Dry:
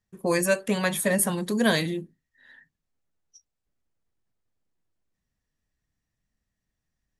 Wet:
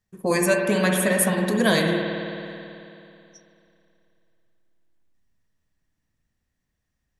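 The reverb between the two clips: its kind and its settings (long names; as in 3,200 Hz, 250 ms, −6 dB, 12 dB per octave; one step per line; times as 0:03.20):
spring reverb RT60 2.8 s, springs 54 ms, chirp 55 ms, DRR 1.5 dB
level +2 dB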